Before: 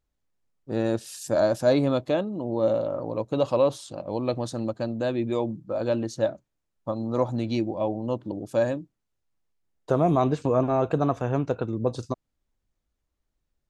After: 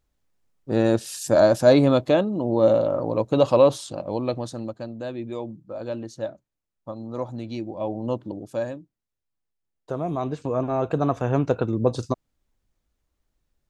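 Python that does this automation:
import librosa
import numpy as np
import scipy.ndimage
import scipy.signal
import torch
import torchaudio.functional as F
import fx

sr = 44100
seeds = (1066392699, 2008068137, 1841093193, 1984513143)

y = fx.gain(x, sr, db=fx.line((3.82, 5.5), (4.89, -5.5), (7.6, -5.5), (8.08, 2.0), (8.79, -6.5), (10.07, -6.5), (11.48, 4.5)))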